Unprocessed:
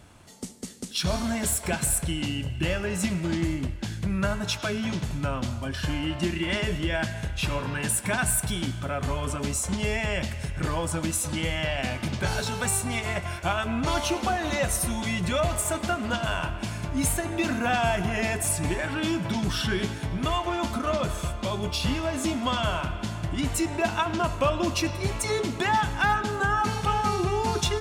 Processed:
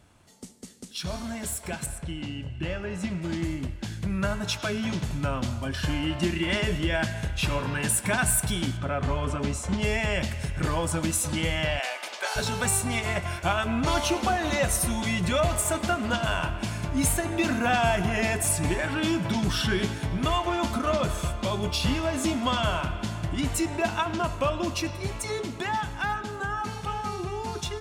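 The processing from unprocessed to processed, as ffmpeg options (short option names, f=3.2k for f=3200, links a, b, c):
-filter_complex "[0:a]asettb=1/sr,asplit=3[a][b][c];[a]atrim=end=1.864[d];[b]atrim=start=1.86:end=3.22,asetpts=PTS-STARTPTS,afade=t=in:d=0.004:c=qsin,afade=t=out:st=1.356:d=0.004:c=qsin,aemphasis=mode=reproduction:type=50fm[e];[c]atrim=start=3.216[f];[d][e]acrossfade=d=0.004:c1=hsin:c2=qsin[g];[g][f]acrossfade=d=0.004:c1=qsin:c2=hsin,asettb=1/sr,asplit=3[h][i][j];[h]atrim=end=8.774[k];[i]atrim=start=8.77:end=9.82,asetpts=PTS-STARTPTS,afade=t=in:d=0.004:c=qsin,afade=t=out:st=1.046:d=0.004:c=qsin,aemphasis=mode=reproduction:type=50fm[l];[j]atrim=start=9.816[m];[k][l]acrossfade=d=0.004:c1=hsin:c2=qsin[n];[n][m]acrossfade=d=0.004:c1=qsin:c2=hsin,asplit=3[o][p][q];[o]afade=t=out:st=11.78:d=0.02[r];[p]highpass=f=540:w=0.5412,highpass=f=540:w=1.3066,afade=t=in:st=11.78:d=0.02,afade=t=out:st=12.35:d=0.02[s];[q]afade=t=in:st=12.35:d=0.02[t];[r][s][t]amix=inputs=3:normalize=0,dynaudnorm=f=250:g=31:m=8dB,volume=-6.5dB"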